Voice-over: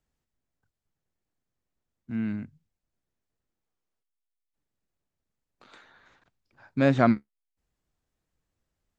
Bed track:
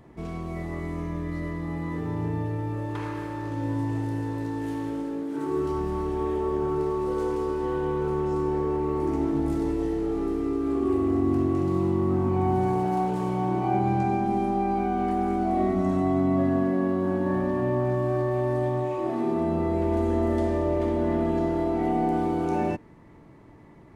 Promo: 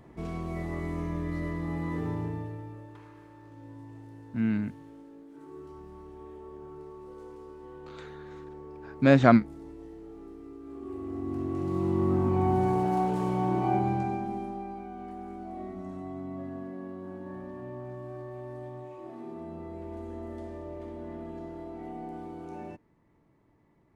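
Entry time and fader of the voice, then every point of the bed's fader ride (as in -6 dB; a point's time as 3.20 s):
2.25 s, +2.5 dB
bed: 2.06 s -1.5 dB
3.04 s -18.5 dB
10.61 s -18.5 dB
12.03 s -1.5 dB
13.70 s -1.5 dB
14.84 s -15.5 dB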